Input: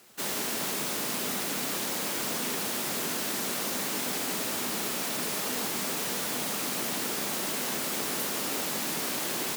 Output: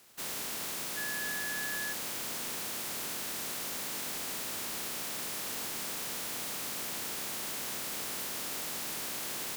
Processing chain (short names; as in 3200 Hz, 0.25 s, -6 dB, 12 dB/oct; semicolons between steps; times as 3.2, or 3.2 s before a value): spectral contrast lowered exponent 0.47; soft clip -29.5 dBFS, distortion -13 dB; 0.96–1.92 whine 1700 Hz -33 dBFS; gain -3 dB